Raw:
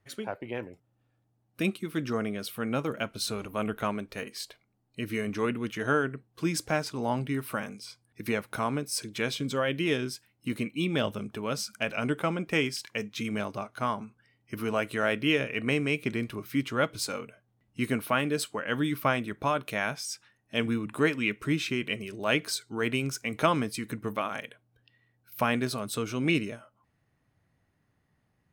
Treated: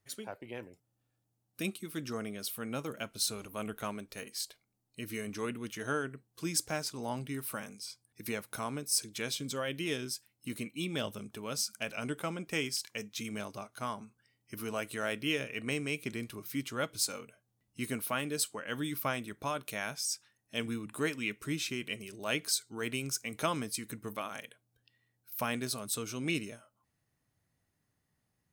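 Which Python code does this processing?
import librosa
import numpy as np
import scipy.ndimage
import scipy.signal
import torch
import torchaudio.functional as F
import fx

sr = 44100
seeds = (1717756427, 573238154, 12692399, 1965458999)

y = fx.bass_treble(x, sr, bass_db=0, treble_db=12)
y = F.gain(torch.from_numpy(y), -8.0).numpy()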